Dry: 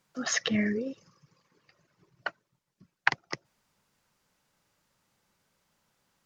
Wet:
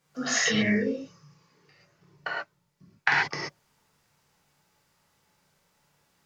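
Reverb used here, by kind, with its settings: gated-style reverb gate 160 ms flat, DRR -6.5 dB; trim -2 dB

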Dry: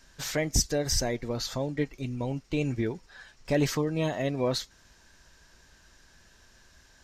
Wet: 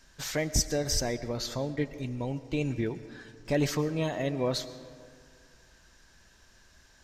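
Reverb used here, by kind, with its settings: algorithmic reverb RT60 2.2 s, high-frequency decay 0.5×, pre-delay 75 ms, DRR 14 dB; trim -1.5 dB

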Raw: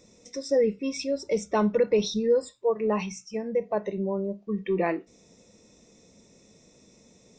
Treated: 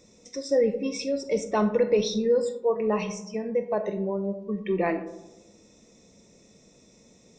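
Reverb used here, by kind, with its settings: algorithmic reverb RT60 1 s, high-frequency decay 0.3×, pre-delay 0 ms, DRR 9 dB

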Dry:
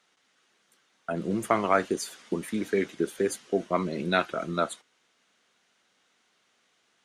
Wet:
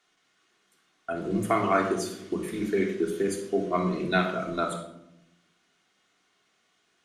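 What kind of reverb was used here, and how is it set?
simulated room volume 2300 m³, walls furnished, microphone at 3.3 m; trim -3.5 dB

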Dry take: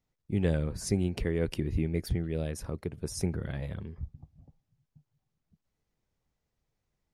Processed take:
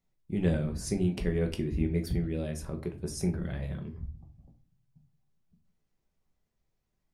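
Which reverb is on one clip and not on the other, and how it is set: simulated room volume 210 m³, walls furnished, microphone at 1.1 m; trim -2.5 dB

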